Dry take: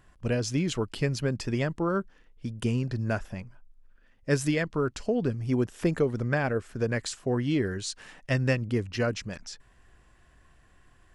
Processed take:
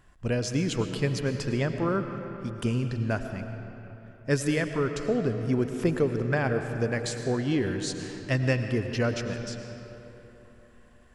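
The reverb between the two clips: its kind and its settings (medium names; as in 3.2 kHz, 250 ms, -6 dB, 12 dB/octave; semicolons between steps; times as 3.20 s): algorithmic reverb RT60 3.5 s, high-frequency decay 0.6×, pre-delay 65 ms, DRR 6.5 dB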